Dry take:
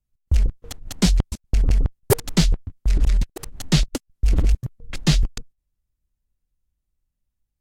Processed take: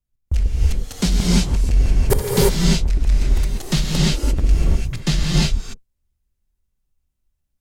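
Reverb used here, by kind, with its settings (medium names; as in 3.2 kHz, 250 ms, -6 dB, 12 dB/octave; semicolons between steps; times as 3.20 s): gated-style reverb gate 370 ms rising, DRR -5 dB; trim -2 dB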